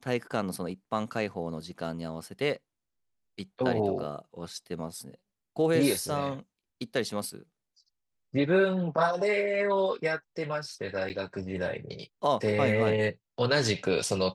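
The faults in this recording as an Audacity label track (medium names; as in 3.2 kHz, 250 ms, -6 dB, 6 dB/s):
11.090000	11.100000	dropout 9.1 ms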